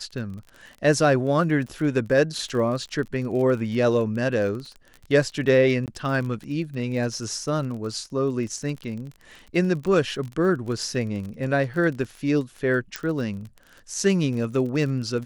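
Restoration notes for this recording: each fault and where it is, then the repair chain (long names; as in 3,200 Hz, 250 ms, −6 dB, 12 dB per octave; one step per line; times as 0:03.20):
surface crackle 29 per second −32 dBFS
0:05.86–0:05.88: drop-out 18 ms
0:12.96: click −11 dBFS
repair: click removal
repair the gap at 0:05.86, 18 ms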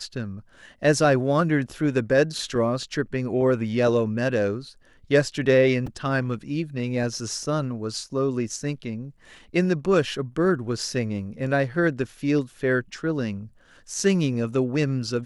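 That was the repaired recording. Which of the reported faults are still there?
none of them is left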